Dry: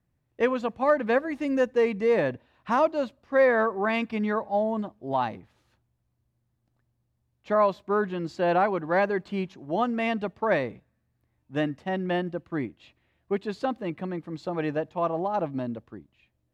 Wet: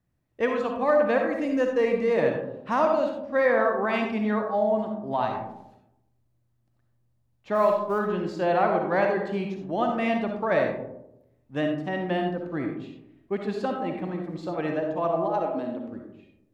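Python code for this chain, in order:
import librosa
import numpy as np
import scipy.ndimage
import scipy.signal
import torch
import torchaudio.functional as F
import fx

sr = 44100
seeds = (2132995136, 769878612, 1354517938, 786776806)

y = fx.law_mismatch(x, sr, coded='A', at=(7.54, 7.98), fade=0.02)
y = fx.highpass(y, sr, hz=fx.line((15.28, 360.0), (15.85, 120.0)), slope=24, at=(15.28, 15.85), fade=0.02)
y = fx.rev_freeverb(y, sr, rt60_s=0.87, hf_ratio=0.3, predelay_ms=20, drr_db=2.0)
y = F.gain(torch.from_numpy(y), -1.5).numpy()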